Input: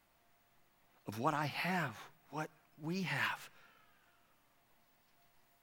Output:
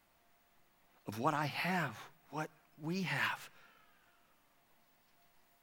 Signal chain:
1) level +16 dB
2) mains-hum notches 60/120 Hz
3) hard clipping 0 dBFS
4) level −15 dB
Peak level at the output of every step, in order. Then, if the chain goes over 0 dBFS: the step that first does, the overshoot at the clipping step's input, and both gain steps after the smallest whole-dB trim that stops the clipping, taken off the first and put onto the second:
−2.5, −2.5, −2.5, −17.5 dBFS
no step passes full scale

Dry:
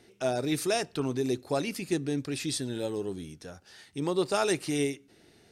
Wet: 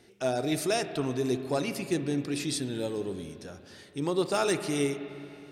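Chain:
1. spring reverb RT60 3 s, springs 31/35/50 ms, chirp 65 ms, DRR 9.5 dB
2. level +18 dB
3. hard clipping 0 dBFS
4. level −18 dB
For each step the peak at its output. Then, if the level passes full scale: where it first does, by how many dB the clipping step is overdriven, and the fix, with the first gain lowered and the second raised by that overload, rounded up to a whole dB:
−14.0, +4.0, 0.0, −18.0 dBFS
step 2, 4.0 dB
step 2 +14 dB, step 4 −14 dB

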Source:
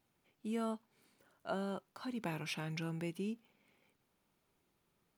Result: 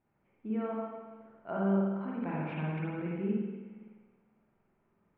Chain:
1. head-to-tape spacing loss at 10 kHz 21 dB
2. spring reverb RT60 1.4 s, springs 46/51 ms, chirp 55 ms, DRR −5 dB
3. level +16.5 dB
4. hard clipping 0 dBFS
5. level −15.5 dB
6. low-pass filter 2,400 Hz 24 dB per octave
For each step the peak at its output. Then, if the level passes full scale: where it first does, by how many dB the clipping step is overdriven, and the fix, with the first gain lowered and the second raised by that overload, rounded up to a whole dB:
−26.5, −20.0, −3.5, −3.5, −19.0, −19.0 dBFS
no step passes full scale

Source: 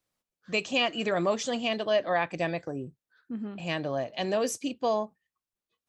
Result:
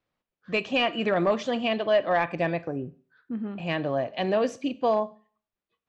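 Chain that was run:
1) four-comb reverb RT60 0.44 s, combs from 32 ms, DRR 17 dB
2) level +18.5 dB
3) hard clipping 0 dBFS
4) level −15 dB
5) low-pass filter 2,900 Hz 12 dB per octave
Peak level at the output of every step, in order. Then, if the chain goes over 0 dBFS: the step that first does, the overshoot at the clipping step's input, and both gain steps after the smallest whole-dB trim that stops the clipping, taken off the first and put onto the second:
−14.0, +4.5, 0.0, −15.0, −14.5 dBFS
step 2, 4.5 dB
step 2 +13.5 dB, step 4 −10 dB

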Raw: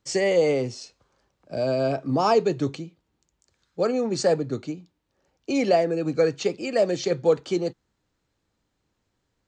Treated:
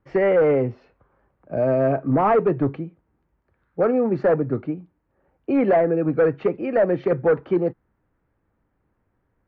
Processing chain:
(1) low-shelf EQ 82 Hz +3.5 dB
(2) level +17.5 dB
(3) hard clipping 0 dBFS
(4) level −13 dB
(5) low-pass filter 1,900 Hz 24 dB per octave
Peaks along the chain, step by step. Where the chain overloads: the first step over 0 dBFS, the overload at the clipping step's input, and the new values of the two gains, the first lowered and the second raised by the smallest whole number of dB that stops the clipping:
−9.0, +8.5, 0.0, −13.0, −11.5 dBFS
step 2, 8.5 dB
step 2 +8.5 dB, step 4 −4 dB

